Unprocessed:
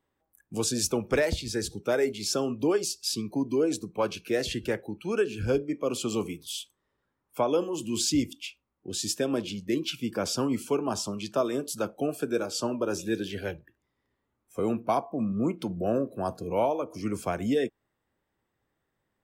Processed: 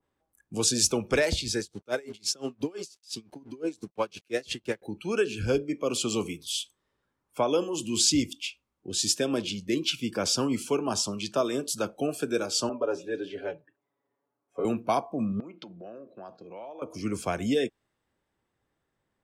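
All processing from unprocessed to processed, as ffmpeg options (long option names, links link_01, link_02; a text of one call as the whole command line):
ffmpeg -i in.wav -filter_complex "[0:a]asettb=1/sr,asplit=3[link_01][link_02][link_03];[link_01]atrim=end=1.604[link_04];[link_02]atrim=start=1.6:end=4.82,asetpts=PTS-STARTPTS,afade=type=in:duration=0.004:curve=qsin,afade=type=out:start_time=3.216:duration=0.004:curve=qsin,highpass=90,aeval=exprs='sgn(val(0))*max(abs(val(0))-0.00237,0)':channel_layout=same,aeval=exprs='val(0)*pow(10,-27*(0.5-0.5*cos(2*PI*5.8*n/s))/20)':channel_layout=same[link_05];[link_03]atrim=start=4.816[link_06];[link_04][link_05]acrossfade=duration=0.004:curve1=hsin:curve2=qsin[link_07];[link_07][link_06]acrossfade=duration=0.004:curve1=qsin:curve2=hsin,asettb=1/sr,asplit=3[link_08][link_09][link_10];[link_08]atrim=end=12.694[link_11];[link_09]atrim=start=12.69:end=14.65,asetpts=PTS-STARTPTS,afade=type=in:duration=0.004:curve=qsin,afade=type=out:start_time=1.956:duration=0.004:curve=qsin,bandpass=frequency=630:width_type=q:width=0.97,aecho=1:1:7.1:0.86,atrim=end_sample=86436[link_12];[link_10]atrim=start=14.646[link_13];[link_11][link_12]acrossfade=duration=0.004:curve1=hsin:curve2=qsin[link_14];[link_14][link_13]acrossfade=duration=0.004:curve1=qsin:curve2=hsin,asettb=1/sr,asplit=3[link_15][link_16][link_17];[link_15]atrim=end=15.404[link_18];[link_16]atrim=start=15.4:end=16.82,asetpts=PTS-STARTPTS,afade=type=in:duration=0.004:curve=qsin,afade=type=out:start_time=1.416:duration=0.004:curve=qsin,agate=range=-33dB:threshold=-42dB:ratio=3:release=100:detection=peak,acompressor=threshold=-37dB:ratio=6:attack=3.2:release=140:knee=1:detection=peak,highpass=240,equalizer=frequency=260:width_type=q:width=4:gain=-5,equalizer=frequency=440:width_type=q:width=4:gain=-5,equalizer=frequency=1000:width_type=q:width=4:gain=-3,lowpass=frequency=4700:width=0.5412,lowpass=frequency=4700:width=1.3066[link_19];[link_17]atrim=start=16.816[link_20];[link_18][link_19]acrossfade=duration=0.004:curve1=hsin:curve2=qsin[link_21];[link_21][link_20]acrossfade=duration=0.004:curve1=qsin:curve2=hsin,lowpass=10000,bandreject=frequency=1900:width=24,adynamicequalizer=threshold=0.00631:dfrequency=2000:dqfactor=0.7:tfrequency=2000:tqfactor=0.7:attack=5:release=100:ratio=0.375:range=3:mode=boostabove:tftype=highshelf" out.wav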